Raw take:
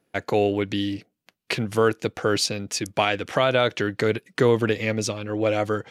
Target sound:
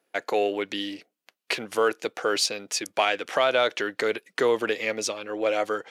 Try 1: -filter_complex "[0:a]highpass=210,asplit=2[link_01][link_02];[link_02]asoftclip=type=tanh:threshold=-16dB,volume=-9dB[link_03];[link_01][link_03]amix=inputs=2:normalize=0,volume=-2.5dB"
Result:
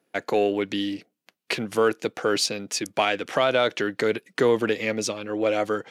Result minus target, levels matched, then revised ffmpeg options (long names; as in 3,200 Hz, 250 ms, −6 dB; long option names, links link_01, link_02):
250 Hz band +5.0 dB
-filter_complex "[0:a]highpass=430,asplit=2[link_01][link_02];[link_02]asoftclip=type=tanh:threshold=-16dB,volume=-9dB[link_03];[link_01][link_03]amix=inputs=2:normalize=0,volume=-2.5dB"